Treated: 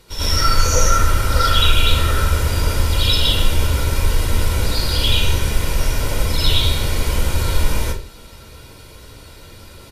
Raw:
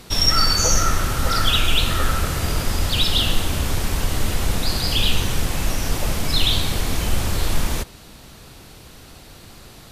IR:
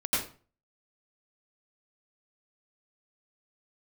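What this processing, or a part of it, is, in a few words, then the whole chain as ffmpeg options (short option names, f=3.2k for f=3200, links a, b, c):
microphone above a desk: -filter_complex "[0:a]aecho=1:1:2.1:0.56[a];[1:a]atrim=start_sample=2205[b];[a][b]afir=irnorm=-1:irlink=0,volume=-8dB"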